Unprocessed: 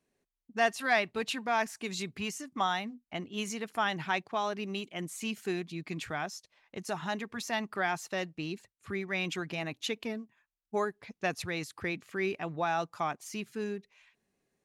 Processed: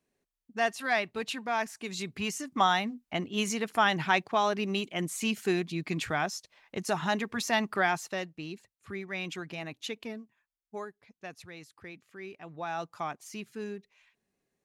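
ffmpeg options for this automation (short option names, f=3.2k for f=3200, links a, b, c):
-af "volume=14.5dB,afade=t=in:st=1.91:d=0.67:silence=0.473151,afade=t=out:st=7.73:d=0.57:silence=0.375837,afade=t=out:st=10.14:d=0.89:silence=0.375837,afade=t=in:st=12.37:d=0.51:silence=0.354813"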